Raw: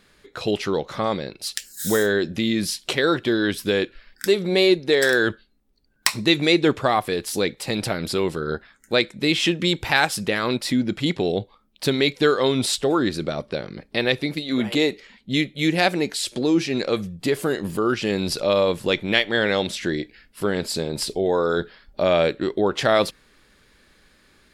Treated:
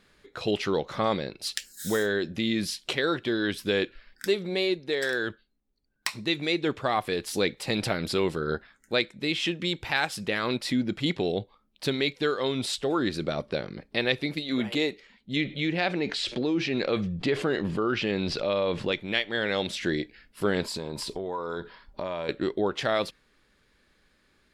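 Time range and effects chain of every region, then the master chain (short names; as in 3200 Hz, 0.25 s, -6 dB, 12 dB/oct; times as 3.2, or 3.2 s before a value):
15.36–18.92 LPF 4100 Hz + fast leveller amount 50%
20.62–22.29 bell 990 Hz +14.5 dB 0.26 oct + compressor 5:1, threshold -27 dBFS
whole clip: dynamic EQ 2900 Hz, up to +3 dB, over -34 dBFS, Q 0.79; vocal rider within 4 dB 0.5 s; high shelf 7000 Hz -5.5 dB; gain -6.5 dB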